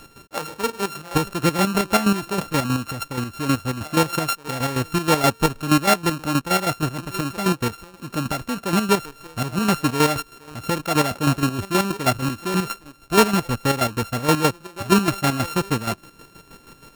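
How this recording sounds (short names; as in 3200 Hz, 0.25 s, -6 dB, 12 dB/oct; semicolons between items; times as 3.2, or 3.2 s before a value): a buzz of ramps at a fixed pitch in blocks of 32 samples; chopped level 6.3 Hz, depth 60%, duty 40%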